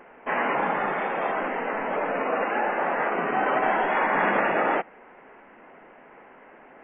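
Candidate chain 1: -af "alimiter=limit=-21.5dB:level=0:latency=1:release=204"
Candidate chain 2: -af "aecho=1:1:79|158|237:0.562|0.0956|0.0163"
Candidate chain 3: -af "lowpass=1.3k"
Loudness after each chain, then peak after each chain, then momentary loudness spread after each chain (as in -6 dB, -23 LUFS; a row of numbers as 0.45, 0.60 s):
-31.0, -24.0, -26.5 LUFS; -21.5, -9.0, -11.5 dBFS; 20, 6, 5 LU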